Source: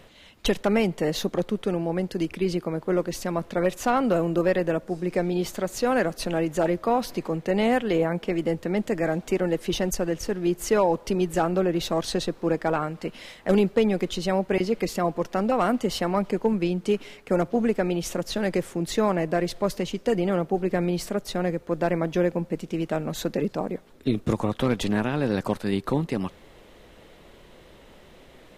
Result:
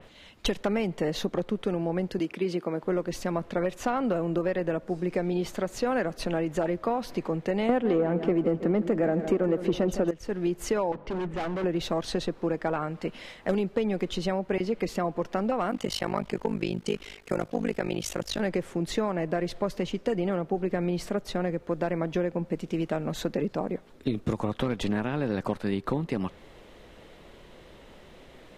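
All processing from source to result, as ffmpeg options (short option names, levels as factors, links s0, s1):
-filter_complex "[0:a]asettb=1/sr,asplit=3[s0][s1][s2];[s0]atrim=end=2.194[s3];[s1]atrim=start=2.19:end=2.83,asetpts=PTS-STARTPTS,afade=t=in:d=0.004:c=qsin,afade=t=out:st=0.636:d=0.004:c=qsin,highpass=200,agate=range=0.0224:threshold=0.00794:ratio=3:release=100:detection=peak[s4];[s2]atrim=start=2.826[s5];[s3][s4]acrossfade=d=0.004:c1=hsin:c2=qsin[s6];[s6][s5]acrossfade=d=0.004:c1=qsin:c2=hsin,asettb=1/sr,asplit=3[s7][s8][s9];[s7]atrim=end=7.694[s10];[s8]atrim=start=7.69:end=10.11,asetpts=PTS-STARTPTS,afade=t=in:d=0.004:c=qsin,afade=t=out:st=2.416:d=0.004:c=qsin,equalizer=f=350:w=0.31:g=11,acontrast=32,aecho=1:1:160|320|480|640|800:0.211|0.106|0.0528|0.0264|0.0132,atrim=end_sample=106722[s11];[s9]atrim=start=10.106[s12];[s10][s11]acrossfade=d=0.004:c1=hsin:c2=qsin[s13];[s13][s12]acrossfade=d=0.004:c1=qsin:c2=hsin,asettb=1/sr,asplit=3[s14][s15][s16];[s14]atrim=end=10.924[s17];[s15]atrim=start=10.92:end=11.64,asetpts=PTS-STARTPTS,afade=t=in:d=0.004:c=qsin,afade=t=out:st=0.716:d=0.004:c=qsin,lowpass=2300,bandreject=f=50:t=h:w=6,bandreject=f=100:t=h:w=6,bandreject=f=150:t=h:w=6,bandreject=f=200:t=h:w=6,bandreject=f=250:t=h:w=6,bandreject=f=300:t=h:w=6,asoftclip=type=hard:threshold=0.0376[s18];[s16]atrim=start=11.636[s19];[s17][s18]acrossfade=d=0.004:c1=hsin:c2=qsin[s20];[s20][s19]acrossfade=d=0.004:c1=qsin:c2=hsin,asettb=1/sr,asplit=3[s21][s22][s23];[s21]atrim=end=15.714[s24];[s22]atrim=start=15.71:end=18.4,asetpts=PTS-STARTPTS,afade=t=in:d=0.004:c=qsin,afade=t=out:st=2.686:d=0.004:c=qsin,highshelf=f=2000:g=10,tremolo=f=51:d=1[s25];[s23]atrim=start=18.396[s26];[s24][s25]acrossfade=d=0.004:c1=hsin:c2=qsin[s27];[s27][s26]acrossfade=d=0.004:c1=qsin:c2=hsin,highshelf=f=11000:g=-8.5,acompressor=threshold=0.0708:ratio=6,adynamicequalizer=threshold=0.00398:dfrequency=3500:dqfactor=0.7:tfrequency=3500:tqfactor=0.7:attack=5:release=100:ratio=0.375:range=2.5:mode=cutabove:tftype=highshelf"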